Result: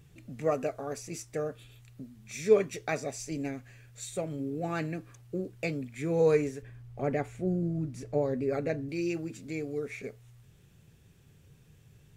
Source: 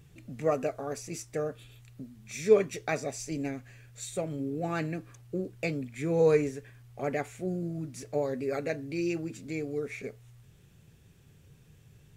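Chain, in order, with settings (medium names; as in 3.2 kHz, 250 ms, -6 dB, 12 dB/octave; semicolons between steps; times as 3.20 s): 6.62–8.89 s: tilt EQ -2 dB/octave; trim -1 dB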